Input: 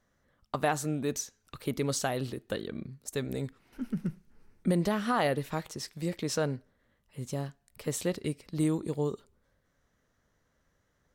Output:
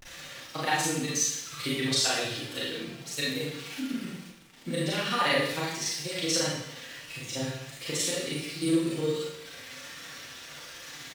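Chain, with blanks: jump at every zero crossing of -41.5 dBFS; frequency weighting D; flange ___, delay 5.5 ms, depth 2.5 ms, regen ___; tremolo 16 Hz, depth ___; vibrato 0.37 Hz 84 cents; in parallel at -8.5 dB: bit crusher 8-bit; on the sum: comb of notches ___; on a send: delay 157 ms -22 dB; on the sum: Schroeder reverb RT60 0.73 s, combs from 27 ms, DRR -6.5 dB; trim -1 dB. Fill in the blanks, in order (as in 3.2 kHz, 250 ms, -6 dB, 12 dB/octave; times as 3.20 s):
1.4 Hz, +29%, 98%, 210 Hz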